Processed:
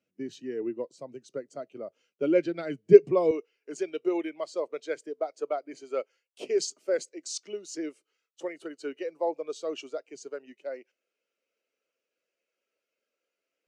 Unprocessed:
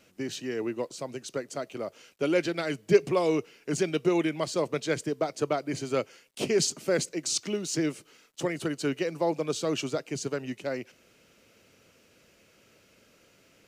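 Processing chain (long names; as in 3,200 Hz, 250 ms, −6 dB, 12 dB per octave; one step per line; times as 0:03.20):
high-pass filter 93 Hz 12 dB per octave, from 0:03.31 410 Hz
every bin expanded away from the loudest bin 1.5 to 1
level +6 dB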